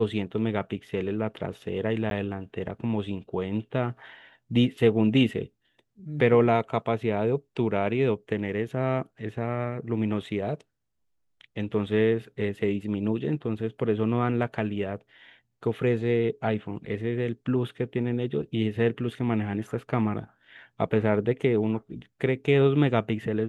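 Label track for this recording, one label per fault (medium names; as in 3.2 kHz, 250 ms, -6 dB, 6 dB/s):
2.100000	2.110000	dropout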